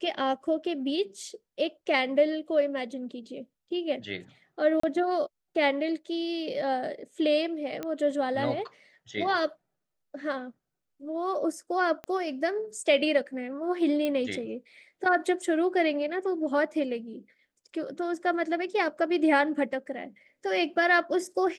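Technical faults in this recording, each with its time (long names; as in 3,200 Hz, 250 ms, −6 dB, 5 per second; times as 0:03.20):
0:04.80–0:04.83: drop-out 34 ms
0:07.83: click −20 dBFS
0:12.04: click −24 dBFS
0:14.05: click −17 dBFS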